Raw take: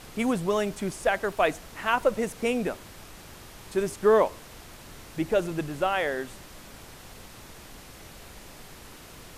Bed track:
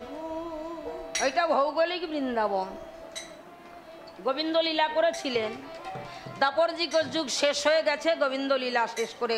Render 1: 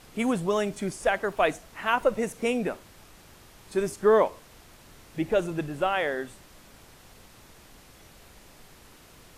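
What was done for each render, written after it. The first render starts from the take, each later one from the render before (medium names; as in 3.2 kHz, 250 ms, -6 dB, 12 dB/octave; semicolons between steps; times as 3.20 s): noise print and reduce 6 dB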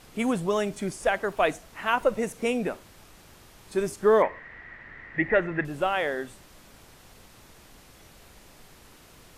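4.22–5.65 s: resonant low-pass 1.9 kHz, resonance Q 16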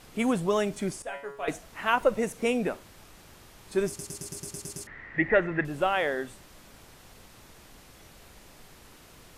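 1.02–1.48 s: feedback comb 140 Hz, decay 0.42 s, mix 90%; 3.88 s: stutter in place 0.11 s, 9 plays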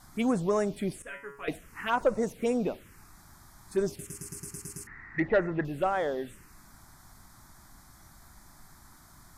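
touch-sensitive phaser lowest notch 440 Hz, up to 3.2 kHz, full sweep at -21 dBFS; saturation -14 dBFS, distortion -23 dB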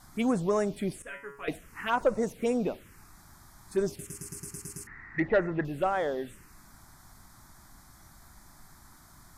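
no audible change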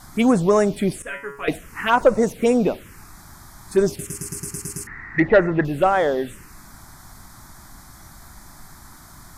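trim +10.5 dB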